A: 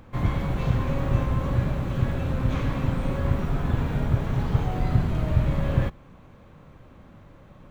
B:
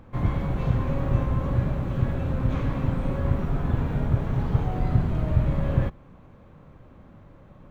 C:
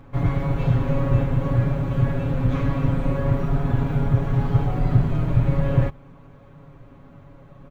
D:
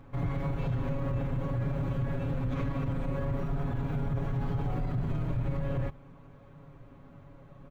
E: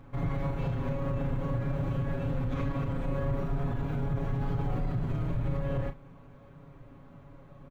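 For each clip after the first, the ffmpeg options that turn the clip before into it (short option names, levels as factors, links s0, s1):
-af "highshelf=f=2100:g=-8"
-af "aecho=1:1:7.2:0.84,volume=1.12"
-af "alimiter=limit=0.126:level=0:latency=1:release=49,volume=0.531"
-filter_complex "[0:a]asplit=2[s0][s1];[s1]adelay=36,volume=0.355[s2];[s0][s2]amix=inputs=2:normalize=0"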